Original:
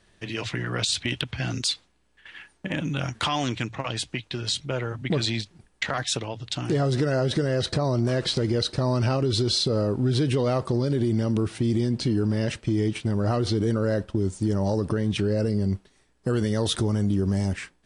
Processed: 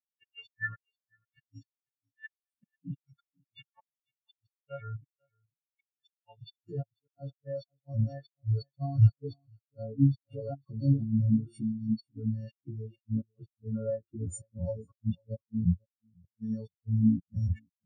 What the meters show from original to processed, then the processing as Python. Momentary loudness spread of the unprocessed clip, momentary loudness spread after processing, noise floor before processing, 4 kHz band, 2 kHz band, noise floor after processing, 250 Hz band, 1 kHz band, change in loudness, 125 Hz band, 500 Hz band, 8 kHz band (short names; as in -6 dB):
7 LU, 19 LU, -63 dBFS, under -30 dB, under -10 dB, under -85 dBFS, -7.0 dB, under -15 dB, -6.0 dB, -5.0 dB, -15.5 dB, under -15 dB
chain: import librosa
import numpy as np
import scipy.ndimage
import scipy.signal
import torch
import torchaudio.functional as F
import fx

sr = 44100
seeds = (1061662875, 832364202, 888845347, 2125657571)

y = fx.freq_snap(x, sr, grid_st=4)
y = fx.recorder_agc(y, sr, target_db=-13.5, rise_db_per_s=38.0, max_gain_db=30)
y = fx.hum_notches(y, sr, base_hz=50, count=9)
y = fx.gate_flip(y, sr, shuts_db=-12.0, range_db=-31)
y = scipy.signal.sosfilt(scipy.signal.butter(2, 9100.0, 'lowpass', fs=sr, output='sos'), y)
y = fx.echo_feedback(y, sr, ms=494, feedback_pct=27, wet_db=-9)
y = fx.spectral_expand(y, sr, expansion=4.0)
y = y * librosa.db_to_amplitude(-2.0)